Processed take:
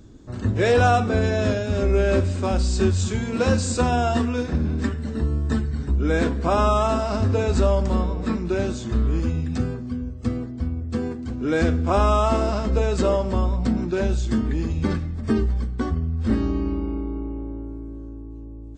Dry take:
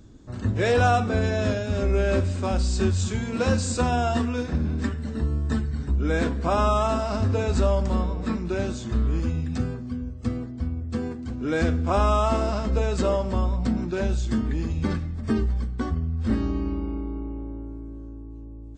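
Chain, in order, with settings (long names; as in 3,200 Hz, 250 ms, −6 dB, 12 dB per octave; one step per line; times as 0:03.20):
parametric band 380 Hz +2.5 dB 0.77 octaves
level +2 dB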